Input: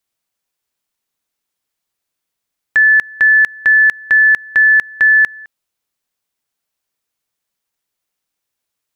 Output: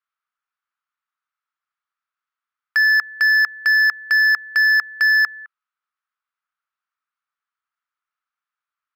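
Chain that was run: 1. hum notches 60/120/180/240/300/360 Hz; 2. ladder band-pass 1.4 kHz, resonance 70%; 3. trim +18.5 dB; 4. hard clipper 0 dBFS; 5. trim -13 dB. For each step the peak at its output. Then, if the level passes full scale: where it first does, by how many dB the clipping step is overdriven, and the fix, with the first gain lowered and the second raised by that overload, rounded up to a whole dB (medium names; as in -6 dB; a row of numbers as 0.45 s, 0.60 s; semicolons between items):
-5.5 dBFS, -11.5 dBFS, +7.0 dBFS, 0.0 dBFS, -13.0 dBFS; step 3, 7.0 dB; step 3 +11.5 dB, step 5 -6 dB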